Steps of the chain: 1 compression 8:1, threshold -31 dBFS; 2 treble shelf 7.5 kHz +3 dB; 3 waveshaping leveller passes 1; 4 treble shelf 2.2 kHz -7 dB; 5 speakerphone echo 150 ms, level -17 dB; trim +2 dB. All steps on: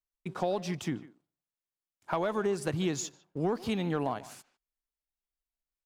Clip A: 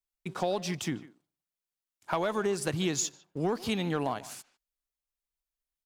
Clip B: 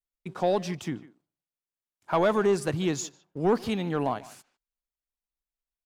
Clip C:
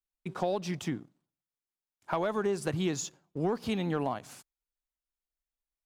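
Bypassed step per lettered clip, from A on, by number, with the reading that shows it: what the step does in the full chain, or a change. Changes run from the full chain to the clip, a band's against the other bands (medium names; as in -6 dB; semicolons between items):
4, 8 kHz band +5.5 dB; 1, mean gain reduction 3.5 dB; 5, echo-to-direct -20.5 dB to none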